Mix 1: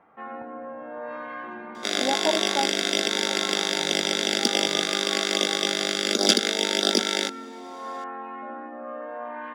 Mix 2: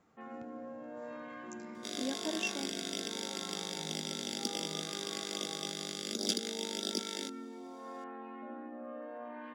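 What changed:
speech: remove low-pass with resonance 810 Hz, resonance Q 5.7
second sound −9.0 dB
master: add parametric band 1,200 Hz −13.5 dB 3 octaves

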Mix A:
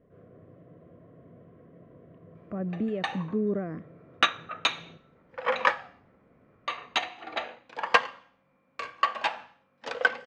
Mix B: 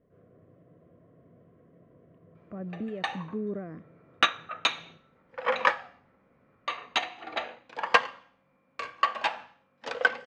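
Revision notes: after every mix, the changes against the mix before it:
speech −5.5 dB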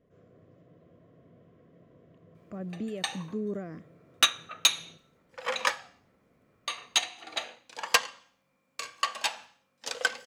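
background −6.0 dB
master: remove low-pass filter 2,000 Hz 12 dB per octave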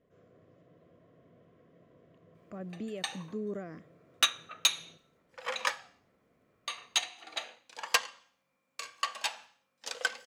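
background −3.5 dB
master: add low-shelf EQ 360 Hz −6 dB

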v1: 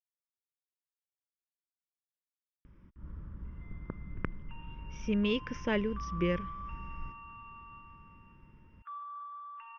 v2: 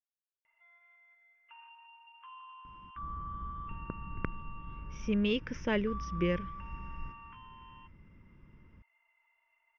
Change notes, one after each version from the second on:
background: entry −3.00 s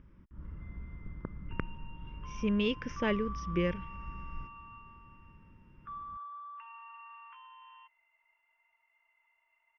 speech: entry −2.65 s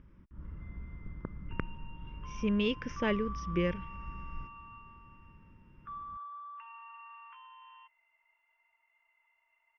nothing changed

